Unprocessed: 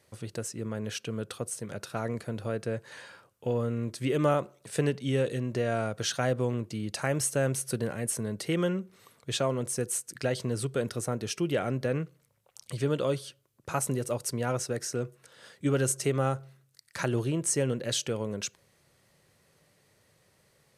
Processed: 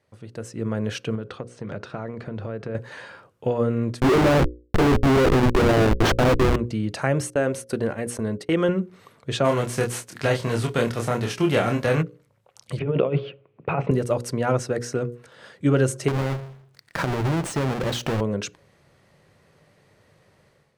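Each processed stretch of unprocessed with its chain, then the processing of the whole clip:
1.15–2.75 compressor 5:1, threshold -35 dBFS + air absorption 110 m
4–6.56 bell 350 Hz +11 dB 0.71 oct + notches 60/120/180/240/300/360/420/480/540 Hz + Schmitt trigger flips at -29.5 dBFS
7.3–8.69 gate -38 dBFS, range -28 dB + bell 140 Hz -11 dB 0.46 oct
9.44–12.01 spectral whitening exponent 0.6 + doubler 26 ms -3.5 dB
12.79–13.91 negative-ratio compressor -31 dBFS, ratio -0.5 + speaker cabinet 110–2800 Hz, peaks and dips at 160 Hz +7 dB, 440 Hz +7 dB, 730 Hz +5 dB, 1600 Hz -5 dB, 2500 Hz +8 dB
16.08–18.21 half-waves squared off + compressor 5:1, threshold -29 dBFS
whole clip: AGC gain up to 11.5 dB; LPF 2000 Hz 6 dB/oct; notches 60/120/180/240/300/360/420/480/540 Hz; gain -2 dB

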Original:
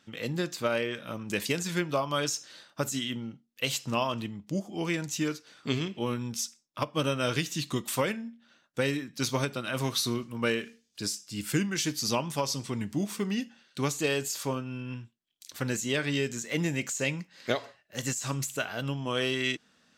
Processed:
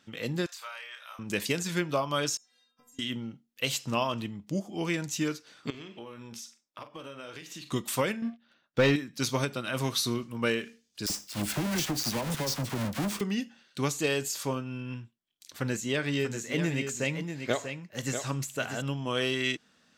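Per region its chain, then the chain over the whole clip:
0.46–1.19 HPF 880 Hz 24 dB/oct + compressor 2:1, threshold -45 dBFS + doubler 30 ms -5 dB
2.37–2.99 compressor 10:1, threshold -37 dBFS + metallic resonator 240 Hz, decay 0.59 s, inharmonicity 0.008
5.7–7.72 tone controls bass -10 dB, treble -6 dB + compressor 8:1, threshold -39 dBFS + doubler 43 ms -10.5 dB
8.22–8.96 LPF 5000 Hz 24 dB/oct + sample leveller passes 2
11.06–13.21 half-waves squared off + compressor, threshold -27 dBFS + dispersion lows, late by 40 ms, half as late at 1100 Hz
15–18.82 high shelf 3400 Hz -4.5 dB + echo 0.641 s -7.5 dB
whole clip: dry

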